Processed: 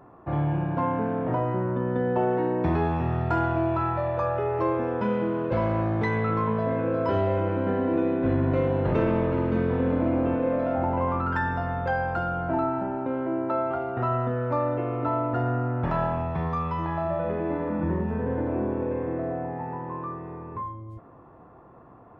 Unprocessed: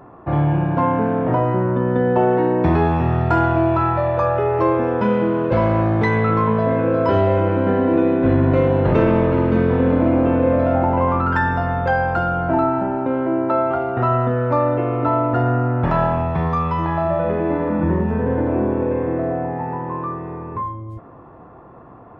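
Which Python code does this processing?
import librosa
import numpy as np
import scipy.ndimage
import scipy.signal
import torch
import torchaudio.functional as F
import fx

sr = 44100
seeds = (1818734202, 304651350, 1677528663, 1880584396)

y = fx.peak_eq(x, sr, hz=75.0, db=-13.0, octaves=0.98, at=(10.35, 10.78))
y = F.gain(torch.from_numpy(y), -8.0).numpy()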